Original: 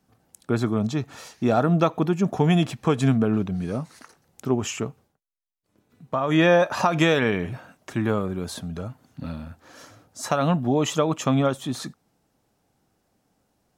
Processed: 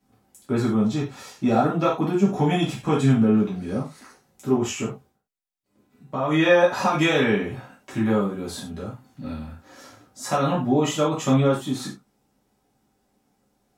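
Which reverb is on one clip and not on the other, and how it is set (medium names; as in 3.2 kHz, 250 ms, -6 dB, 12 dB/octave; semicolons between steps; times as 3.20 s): gated-style reverb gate 130 ms falling, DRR -7.5 dB; trim -7.5 dB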